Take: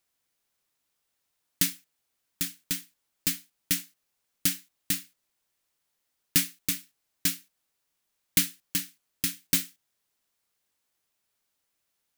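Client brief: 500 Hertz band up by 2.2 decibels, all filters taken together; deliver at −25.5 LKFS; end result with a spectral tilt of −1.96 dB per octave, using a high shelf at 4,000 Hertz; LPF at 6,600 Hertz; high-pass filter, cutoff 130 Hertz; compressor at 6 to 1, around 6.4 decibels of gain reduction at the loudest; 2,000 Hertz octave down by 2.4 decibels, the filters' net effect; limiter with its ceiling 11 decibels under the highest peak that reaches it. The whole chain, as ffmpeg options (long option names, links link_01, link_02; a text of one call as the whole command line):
ffmpeg -i in.wav -af "highpass=130,lowpass=6600,equalizer=frequency=500:width_type=o:gain=3.5,equalizer=frequency=2000:width_type=o:gain=-4.5,highshelf=frequency=4000:gain=5,acompressor=threshold=-29dB:ratio=6,volume=16dB,alimiter=limit=-7dB:level=0:latency=1" out.wav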